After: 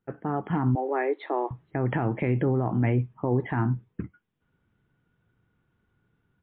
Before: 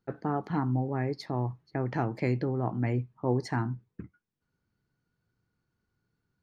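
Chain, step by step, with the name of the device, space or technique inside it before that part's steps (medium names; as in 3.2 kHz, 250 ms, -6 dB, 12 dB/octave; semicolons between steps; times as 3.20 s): 0.75–1.51 s: steep high-pass 320 Hz 48 dB/octave; low-bitrate web radio (level rider gain up to 9 dB; peak limiter -15.5 dBFS, peak gain reduction 9 dB; MP3 40 kbps 8 kHz)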